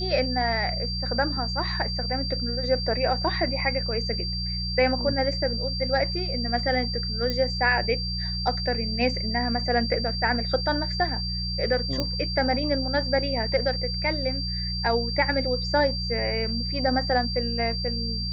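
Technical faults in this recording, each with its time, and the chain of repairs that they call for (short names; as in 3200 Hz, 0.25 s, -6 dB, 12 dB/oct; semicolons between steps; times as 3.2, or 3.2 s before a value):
hum 60 Hz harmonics 3 -31 dBFS
tone 4700 Hz -30 dBFS
7.3 pop -15 dBFS
12 pop -13 dBFS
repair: de-click; de-hum 60 Hz, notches 3; notch 4700 Hz, Q 30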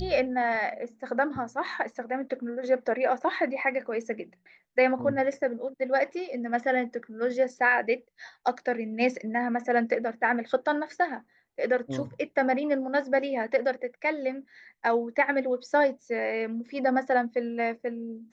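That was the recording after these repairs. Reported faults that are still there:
none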